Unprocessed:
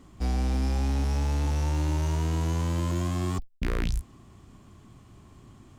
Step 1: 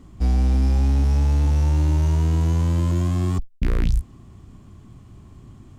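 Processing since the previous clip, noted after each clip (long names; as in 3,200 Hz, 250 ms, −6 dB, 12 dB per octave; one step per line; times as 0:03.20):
low-shelf EQ 280 Hz +9 dB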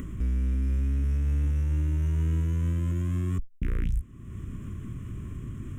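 upward compression, threshold −21 dBFS
brickwall limiter −17 dBFS, peak gain reduction 6 dB
phaser with its sweep stopped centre 1,900 Hz, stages 4
level −3 dB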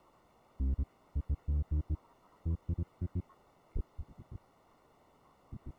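time-frequency cells dropped at random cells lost 77%
bit-depth reduction 8 bits, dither triangular
Savitzky-Golay smoothing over 65 samples
level −5.5 dB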